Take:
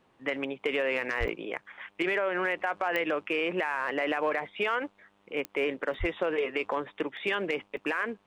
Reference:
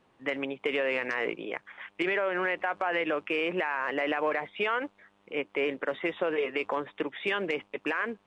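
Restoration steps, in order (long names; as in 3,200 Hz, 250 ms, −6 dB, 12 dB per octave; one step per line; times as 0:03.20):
clipped peaks rebuilt −19.5 dBFS
click removal
0:01.19–0:01.31: high-pass filter 140 Hz 24 dB per octave
0:05.99–0:06.11: high-pass filter 140 Hz 24 dB per octave
repair the gap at 0:01.28/0:01.65/0:05.94/0:07.17/0:07.77, 1 ms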